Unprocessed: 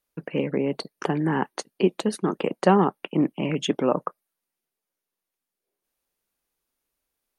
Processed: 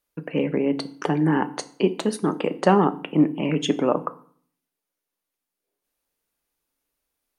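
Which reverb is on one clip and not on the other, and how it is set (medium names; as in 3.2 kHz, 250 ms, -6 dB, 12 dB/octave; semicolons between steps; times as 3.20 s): FDN reverb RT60 0.52 s, low-frequency decay 1.35×, high-frequency decay 0.85×, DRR 10.5 dB; trim +1 dB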